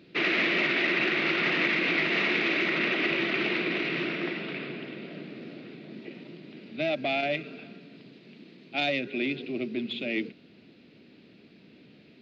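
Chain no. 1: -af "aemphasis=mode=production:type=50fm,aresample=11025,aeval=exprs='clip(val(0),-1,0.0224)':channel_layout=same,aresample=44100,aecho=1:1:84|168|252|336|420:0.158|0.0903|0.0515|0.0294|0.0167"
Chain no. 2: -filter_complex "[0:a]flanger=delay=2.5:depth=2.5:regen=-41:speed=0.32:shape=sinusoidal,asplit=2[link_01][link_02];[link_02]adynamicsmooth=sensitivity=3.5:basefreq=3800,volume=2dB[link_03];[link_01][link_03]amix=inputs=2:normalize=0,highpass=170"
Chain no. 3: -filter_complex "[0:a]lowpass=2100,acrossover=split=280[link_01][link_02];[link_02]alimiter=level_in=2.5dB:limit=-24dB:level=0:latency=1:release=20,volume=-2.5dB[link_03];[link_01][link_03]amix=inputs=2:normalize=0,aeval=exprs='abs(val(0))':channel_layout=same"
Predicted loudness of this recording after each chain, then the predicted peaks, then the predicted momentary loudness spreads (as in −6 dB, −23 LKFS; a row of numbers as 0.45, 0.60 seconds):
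−28.5, −24.5, −37.5 LKFS; −11.5, −11.0, −22.0 dBFS; 18, 19, 15 LU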